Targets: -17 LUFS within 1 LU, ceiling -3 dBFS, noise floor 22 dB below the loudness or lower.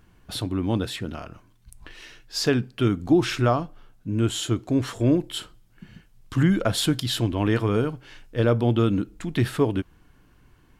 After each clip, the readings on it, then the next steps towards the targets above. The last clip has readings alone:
loudness -24.5 LUFS; peak -9.0 dBFS; loudness target -17.0 LUFS
-> gain +7.5 dB; limiter -3 dBFS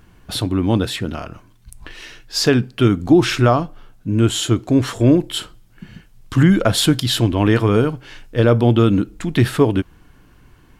loudness -17.0 LUFS; peak -3.0 dBFS; noise floor -50 dBFS

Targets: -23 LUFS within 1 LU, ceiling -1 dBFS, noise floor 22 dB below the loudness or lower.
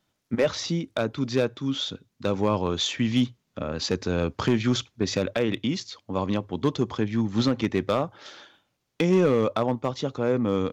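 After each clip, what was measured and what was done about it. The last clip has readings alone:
clipped 0.7%; flat tops at -14.0 dBFS; loudness -26.0 LUFS; peak -14.0 dBFS; loudness target -23.0 LUFS
-> clip repair -14 dBFS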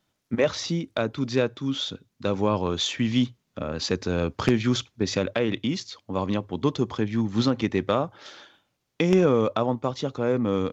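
clipped 0.0%; loudness -26.0 LUFS; peak -5.0 dBFS; loudness target -23.0 LUFS
-> gain +3 dB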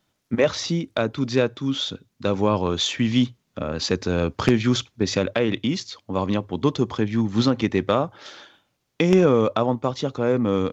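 loudness -23.0 LUFS; peak -2.0 dBFS; noise floor -73 dBFS

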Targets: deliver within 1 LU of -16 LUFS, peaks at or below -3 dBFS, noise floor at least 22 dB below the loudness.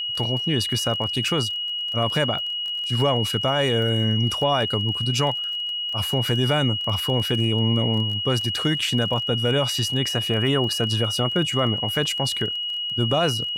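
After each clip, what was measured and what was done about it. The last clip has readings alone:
ticks 21/s; steady tone 2900 Hz; tone level -25 dBFS; loudness -22.0 LUFS; peak -10.5 dBFS; loudness target -16.0 LUFS
-> de-click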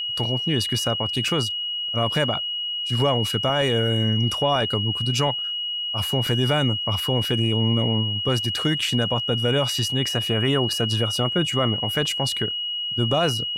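ticks 0/s; steady tone 2900 Hz; tone level -25 dBFS
-> notch 2900 Hz, Q 30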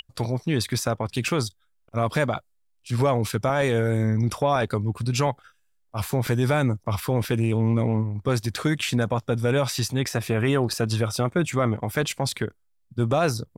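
steady tone none; loudness -24.5 LUFS; peak -12.0 dBFS; loudness target -16.0 LUFS
-> gain +8.5 dB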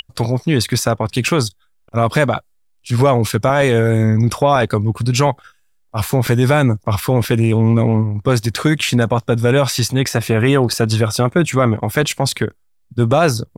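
loudness -16.0 LUFS; peak -3.5 dBFS; noise floor -58 dBFS

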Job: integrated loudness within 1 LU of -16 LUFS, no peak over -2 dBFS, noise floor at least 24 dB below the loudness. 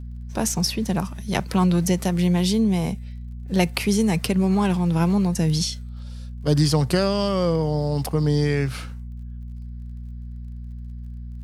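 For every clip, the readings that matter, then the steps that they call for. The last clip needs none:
ticks 26/s; hum 60 Hz; harmonics up to 240 Hz; hum level -32 dBFS; loudness -22.0 LUFS; peak -4.0 dBFS; loudness target -16.0 LUFS
-> de-click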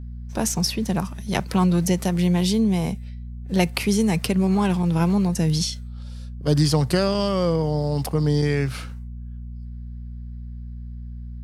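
ticks 0.17/s; hum 60 Hz; harmonics up to 240 Hz; hum level -32 dBFS
-> de-hum 60 Hz, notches 4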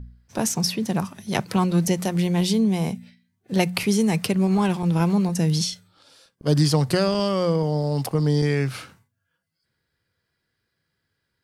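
hum none; loudness -22.5 LUFS; peak -4.0 dBFS; loudness target -16.0 LUFS
-> gain +6.5 dB; limiter -2 dBFS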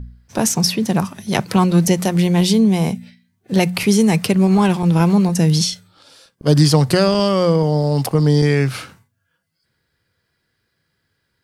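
loudness -16.0 LUFS; peak -2.0 dBFS; noise floor -71 dBFS

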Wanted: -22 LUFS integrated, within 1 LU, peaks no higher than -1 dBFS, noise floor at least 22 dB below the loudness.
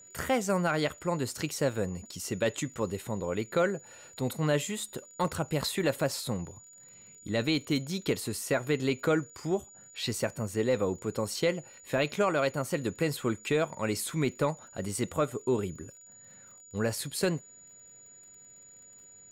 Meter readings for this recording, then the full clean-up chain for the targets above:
ticks 34/s; steady tone 6900 Hz; tone level -51 dBFS; loudness -31.0 LUFS; peak -17.5 dBFS; loudness target -22.0 LUFS
-> de-click; notch 6900 Hz, Q 30; gain +9 dB

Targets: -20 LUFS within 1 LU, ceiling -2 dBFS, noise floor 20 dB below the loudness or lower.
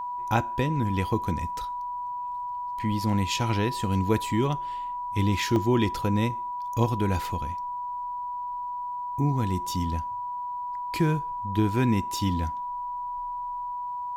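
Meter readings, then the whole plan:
dropouts 1; longest dropout 1.4 ms; steady tone 980 Hz; tone level -30 dBFS; loudness -28.0 LUFS; peak -9.0 dBFS; loudness target -20.0 LUFS
-> interpolate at 5.56, 1.4 ms; notch 980 Hz, Q 30; gain +8 dB; limiter -2 dBFS

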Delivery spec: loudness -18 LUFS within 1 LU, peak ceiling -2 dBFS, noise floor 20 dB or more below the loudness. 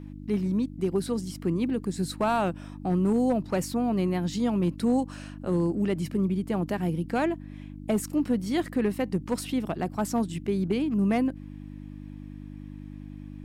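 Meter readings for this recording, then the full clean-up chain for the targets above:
clipped 0.4%; flat tops at -17.5 dBFS; hum 50 Hz; harmonics up to 300 Hz; hum level -40 dBFS; loudness -28.0 LUFS; peak -17.5 dBFS; loudness target -18.0 LUFS
-> clip repair -17.5 dBFS; de-hum 50 Hz, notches 6; gain +10 dB

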